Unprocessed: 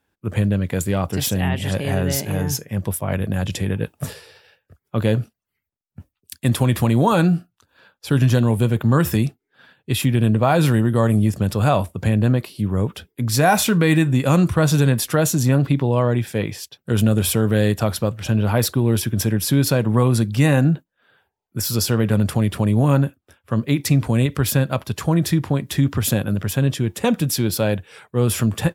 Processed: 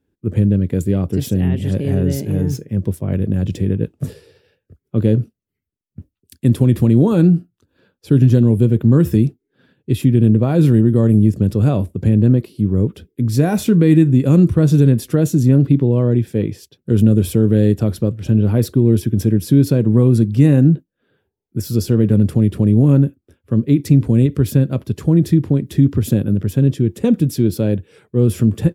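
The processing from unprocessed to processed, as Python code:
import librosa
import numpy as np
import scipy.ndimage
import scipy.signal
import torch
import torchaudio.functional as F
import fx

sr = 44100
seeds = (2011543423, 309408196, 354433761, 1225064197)

y = fx.median_filter(x, sr, points=3, at=(2.49, 4.04))
y = fx.low_shelf_res(y, sr, hz=550.0, db=12.5, q=1.5)
y = y * librosa.db_to_amplitude(-8.5)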